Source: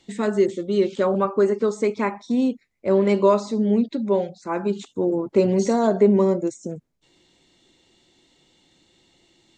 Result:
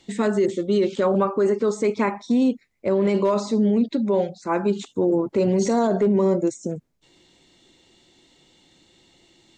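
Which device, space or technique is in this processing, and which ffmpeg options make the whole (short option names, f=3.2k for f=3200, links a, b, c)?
clipper into limiter: -af "asoftclip=type=hard:threshold=-8dB,alimiter=limit=-15.5dB:level=0:latency=1:release=16,volume=3dB"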